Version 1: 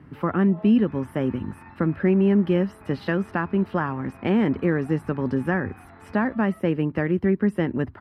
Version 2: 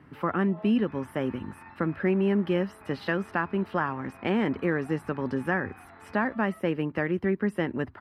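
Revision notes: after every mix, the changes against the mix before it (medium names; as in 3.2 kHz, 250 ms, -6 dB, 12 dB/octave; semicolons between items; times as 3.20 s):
master: add bass shelf 370 Hz -8.5 dB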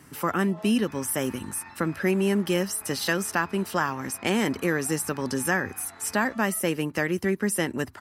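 master: remove distance through air 450 m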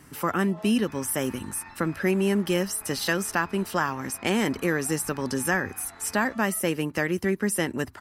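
master: remove high-pass 64 Hz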